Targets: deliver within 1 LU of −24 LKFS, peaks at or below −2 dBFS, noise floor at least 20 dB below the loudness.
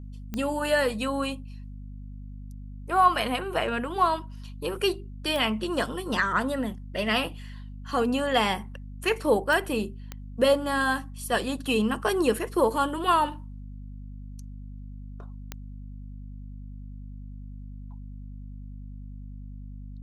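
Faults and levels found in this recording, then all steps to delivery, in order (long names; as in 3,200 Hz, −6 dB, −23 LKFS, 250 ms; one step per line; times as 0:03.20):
number of clicks 5; mains hum 50 Hz; hum harmonics up to 250 Hz; level of the hum −37 dBFS; integrated loudness −26.5 LKFS; sample peak −8.5 dBFS; target loudness −24.0 LKFS
→ click removal
mains-hum notches 50/100/150/200/250 Hz
level +2.5 dB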